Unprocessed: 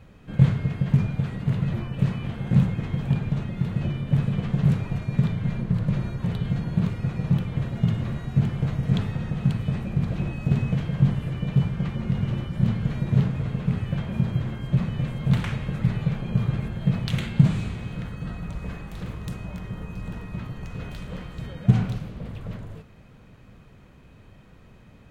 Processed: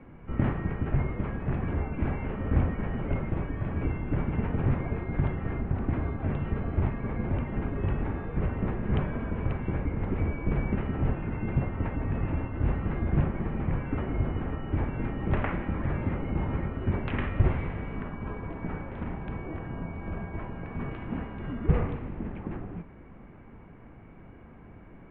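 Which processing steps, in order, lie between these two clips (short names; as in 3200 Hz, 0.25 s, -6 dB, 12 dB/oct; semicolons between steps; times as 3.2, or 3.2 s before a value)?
tilt shelf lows +9 dB, about 800 Hz; mistuned SSB -270 Hz 320–2800 Hz; gain +7.5 dB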